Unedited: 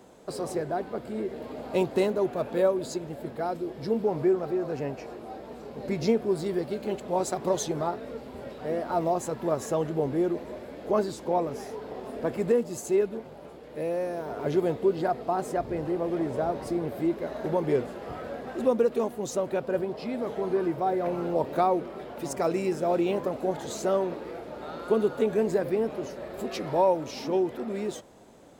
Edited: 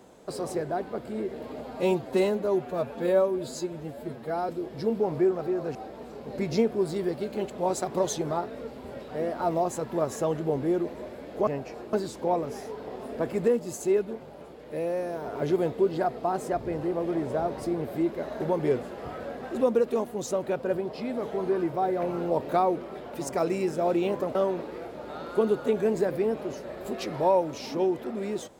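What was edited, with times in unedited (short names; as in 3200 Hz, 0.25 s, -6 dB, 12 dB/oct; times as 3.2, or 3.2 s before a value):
1.61–3.53 stretch 1.5×
4.79–5.25 move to 10.97
23.39–23.88 cut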